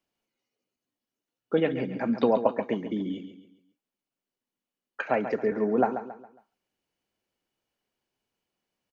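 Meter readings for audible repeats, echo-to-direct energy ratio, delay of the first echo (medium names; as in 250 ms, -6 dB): 3, -9.5 dB, 137 ms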